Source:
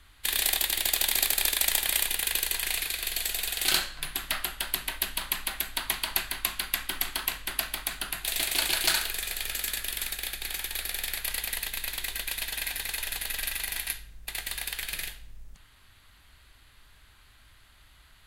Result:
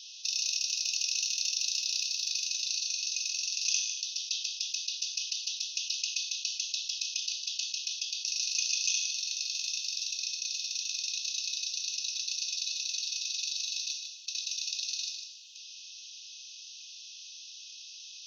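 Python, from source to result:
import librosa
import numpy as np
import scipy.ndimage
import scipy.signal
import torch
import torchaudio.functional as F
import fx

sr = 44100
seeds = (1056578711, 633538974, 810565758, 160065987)

y = scipy.signal.sosfilt(scipy.signal.ellip(4, 1.0, 40, 4300.0, 'lowpass', fs=sr, output='sos'), x)
y = fx.tilt_eq(y, sr, slope=4.0)
y = y * np.sin(2.0 * np.pi * 1900.0 * np.arange(len(y)) / sr)
y = fx.brickwall_highpass(y, sr, low_hz=2500.0)
y = y + 10.0 ** (-14.0 / 20.0) * np.pad(y, (int(152 * sr / 1000.0), 0))[:len(y)]
y = fx.rev_fdn(y, sr, rt60_s=0.7, lf_ratio=1.0, hf_ratio=0.95, size_ms=47.0, drr_db=11.5)
y = fx.env_flatten(y, sr, amount_pct=50)
y = y * 10.0 ** (-5.0 / 20.0)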